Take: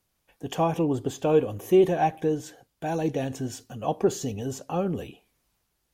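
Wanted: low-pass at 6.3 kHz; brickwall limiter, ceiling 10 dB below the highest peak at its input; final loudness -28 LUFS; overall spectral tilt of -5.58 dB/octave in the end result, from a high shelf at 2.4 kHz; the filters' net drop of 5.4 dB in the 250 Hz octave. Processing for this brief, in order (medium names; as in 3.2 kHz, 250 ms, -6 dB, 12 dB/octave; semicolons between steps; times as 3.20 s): low-pass 6.3 kHz; peaking EQ 250 Hz -9 dB; treble shelf 2.4 kHz -7.5 dB; trim +6.5 dB; peak limiter -17 dBFS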